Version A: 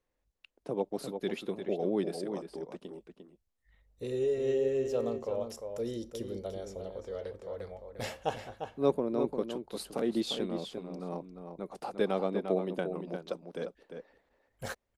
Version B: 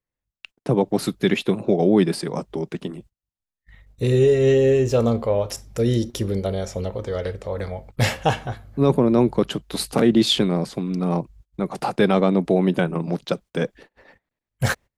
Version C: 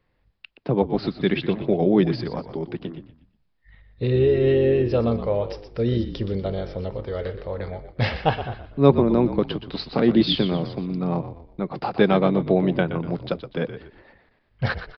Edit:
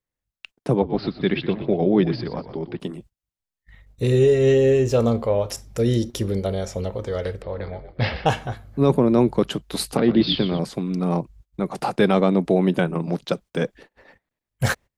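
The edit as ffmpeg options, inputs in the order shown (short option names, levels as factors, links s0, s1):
-filter_complex "[2:a]asplit=3[s0][s1][s2];[1:a]asplit=4[s3][s4][s5][s6];[s3]atrim=end=0.772[s7];[s0]atrim=start=0.768:end=2.802[s8];[s4]atrim=start=2.798:end=7.422[s9];[s1]atrim=start=7.418:end=8.262[s10];[s5]atrim=start=8.258:end=9.972[s11];[s2]atrim=start=9.968:end=10.592[s12];[s6]atrim=start=10.588[s13];[s7][s8]acrossfade=d=0.004:c1=hsin:c2=hsin[s14];[s14][s9]acrossfade=d=0.004:c1=hsin:c2=hsin[s15];[s15][s10]acrossfade=d=0.004:c1=hsin:c2=hsin[s16];[s16][s11]acrossfade=d=0.004:c1=hsin:c2=hsin[s17];[s17][s12]acrossfade=d=0.004:c1=hsin:c2=hsin[s18];[s18][s13]acrossfade=d=0.004:c1=hsin:c2=hsin"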